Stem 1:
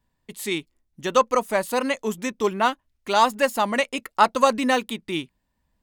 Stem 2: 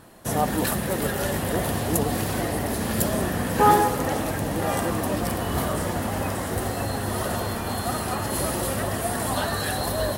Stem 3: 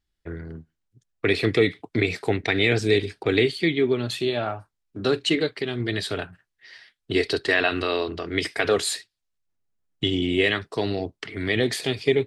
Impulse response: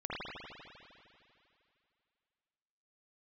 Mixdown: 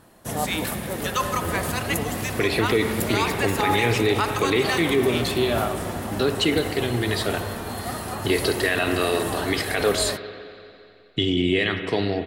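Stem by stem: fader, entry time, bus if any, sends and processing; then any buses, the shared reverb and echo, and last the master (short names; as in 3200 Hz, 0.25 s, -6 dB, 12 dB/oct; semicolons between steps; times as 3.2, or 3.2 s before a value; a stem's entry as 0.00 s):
0.0 dB, 0.00 s, send -11.5 dB, HPF 1300 Hz 12 dB/oct
-4.0 dB, 0.00 s, send -23 dB, dry
+1.0 dB, 1.15 s, send -13 dB, dry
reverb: on, RT60 2.6 s, pre-delay 50 ms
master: limiter -11 dBFS, peak gain reduction 8.5 dB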